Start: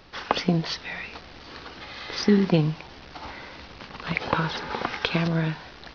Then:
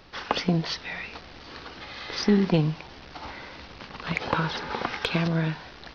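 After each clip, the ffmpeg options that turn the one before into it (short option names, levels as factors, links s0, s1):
-af "acontrast=81,volume=0.422"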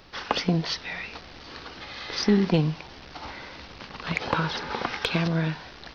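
-af "highshelf=f=5700:g=5"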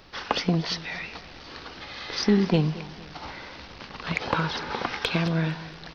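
-af "aecho=1:1:230|460|690:0.126|0.0516|0.0212"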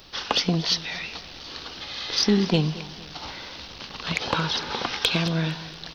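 -af "aexciter=amount=3.3:drive=2.4:freq=2900"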